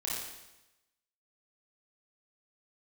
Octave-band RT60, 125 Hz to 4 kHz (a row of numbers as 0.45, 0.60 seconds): 1.0, 0.95, 0.95, 0.95, 0.95, 0.95 seconds